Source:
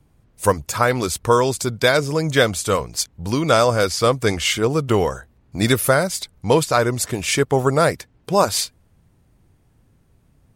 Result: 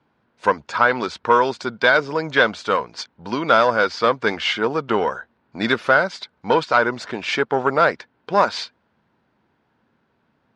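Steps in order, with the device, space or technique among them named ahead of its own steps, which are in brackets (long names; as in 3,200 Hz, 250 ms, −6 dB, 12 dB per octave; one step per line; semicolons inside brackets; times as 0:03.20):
guitar amplifier (tube saturation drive 6 dB, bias 0.3; bass and treble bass −12 dB, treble 0 dB; loudspeaker in its box 100–4,400 Hz, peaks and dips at 100 Hz −4 dB, 220 Hz +7 dB, 940 Hz +6 dB, 1,500 Hz +8 dB)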